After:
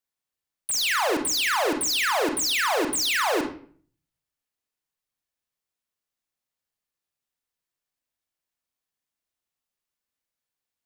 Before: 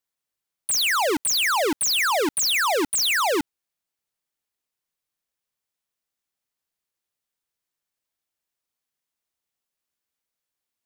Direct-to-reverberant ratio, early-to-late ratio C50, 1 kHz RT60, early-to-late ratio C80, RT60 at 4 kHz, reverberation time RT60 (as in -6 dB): 3.0 dB, 7.0 dB, 0.45 s, 11.5 dB, 0.35 s, 0.50 s